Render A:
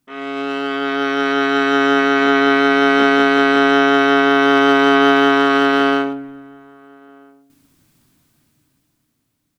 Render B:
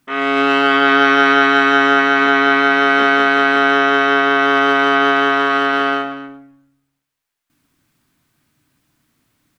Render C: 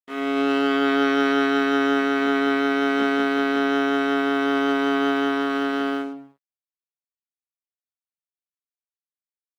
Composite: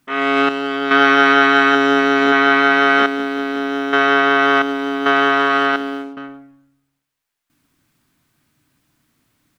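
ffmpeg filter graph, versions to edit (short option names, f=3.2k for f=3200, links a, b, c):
-filter_complex "[0:a]asplit=2[a][b];[2:a]asplit=3[c][d][e];[1:a]asplit=6[f][g][h][i][j][k];[f]atrim=end=0.492[l];[a]atrim=start=0.488:end=0.912[m];[g]atrim=start=0.908:end=1.752[n];[b]atrim=start=1.748:end=2.322[o];[h]atrim=start=2.318:end=3.062[p];[c]atrim=start=3.058:end=3.932[q];[i]atrim=start=3.928:end=4.622[r];[d]atrim=start=4.618:end=5.062[s];[j]atrim=start=5.058:end=5.762[t];[e]atrim=start=5.758:end=6.172[u];[k]atrim=start=6.168[v];[l][m]acrossfade=d=0.004:c1=hsin:c2=hsin[w];[w][n]acrossfade=d=0.004:c1=hsin:c2=hsin[x];[x][o]acrossfade=d=0.004:c1=hsin:c2=hsin[y];[y][p]acrossfade=d=0.004:c1=hsin:c2=hsin[z];[z][q]acrossfade=d=0.004:c1=hsin:c2=hsin[aa];[aa][r]acrossfade=d=0.004:c1=hsin:c2=hsin[ab];[ab][s]acrossfade=d=0.004:c1=hsin:c2=hsin[ac];[ac][t]acrossfade=d=0.004:c1=hsin:c2=hsin[ad];[ad][u]acrossfade=d=0.004:c1=hsin:c2=hsin[ae];[ae][v]acrossfade=d=0.004:c1=hsin:c2=hsin"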